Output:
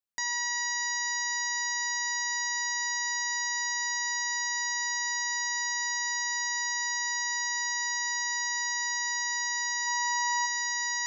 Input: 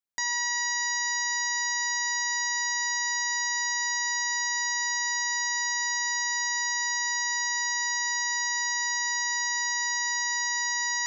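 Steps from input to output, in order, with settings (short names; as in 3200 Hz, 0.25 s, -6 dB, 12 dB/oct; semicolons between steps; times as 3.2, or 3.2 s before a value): 9.86–10.45 small resonant body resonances 900/1400/2600 Hz, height 11 dB -> 15 dB, ringing for 25 ms; gain -2.5 dB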